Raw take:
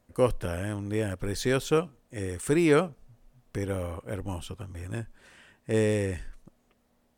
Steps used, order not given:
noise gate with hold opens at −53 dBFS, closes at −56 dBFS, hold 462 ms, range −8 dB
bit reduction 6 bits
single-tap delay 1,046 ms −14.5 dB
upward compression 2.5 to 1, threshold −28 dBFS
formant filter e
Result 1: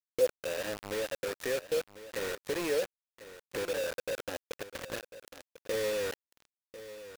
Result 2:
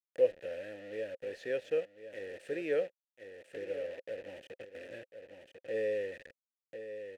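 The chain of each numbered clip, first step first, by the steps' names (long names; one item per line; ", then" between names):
formant filter, then noise gate with hold, then upward compression, then bit reduction, then single-tap delay
noise gate with hold, then bit reduction, then single-tap delay, then upward compression, then formant filter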